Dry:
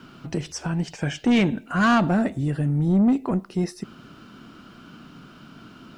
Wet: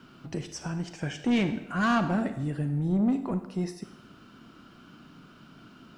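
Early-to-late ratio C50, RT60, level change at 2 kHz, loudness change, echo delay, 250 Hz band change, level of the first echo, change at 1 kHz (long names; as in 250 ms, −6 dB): 10.5 dB, 0.90 s, −6.0 dB, −6.0 dB, no echo audible, −6.0 dB, no echo audible, −6.0 dB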